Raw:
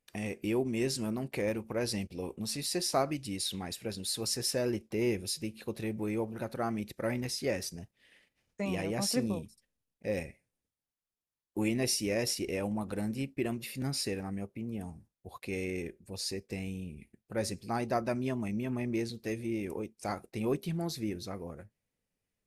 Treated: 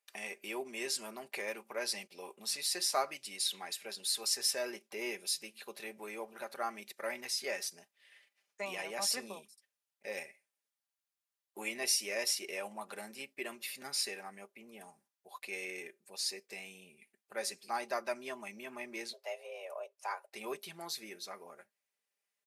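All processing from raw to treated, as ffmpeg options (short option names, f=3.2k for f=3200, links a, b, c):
-filter_complex "[0:a]asettb=1/sr,asplit=3[a][b][c];[a]atrim=end=19.134[d];[b]atrim=start=19.13:end=20.32,asetpts=PTS-STARTPTS,afade=t=in:d=0.004:c=qsin,afade=t=out:st=1.186:d=0.004:c=qsin,highpass=f=290:w=0.5412,highpass=f=290:w=1.3066,highshelf=f=2.6k:g=-10,afreqshift=180[e];[c]atrim=start=20.316[f];[d][e]acrossfade=d=0.004:c1=hsin:c2=qsin[g];[g][f]acrossfade=d=0.004:c1=qsin:c2=hsin,highpass=770,aecho=1:1:5:0.52"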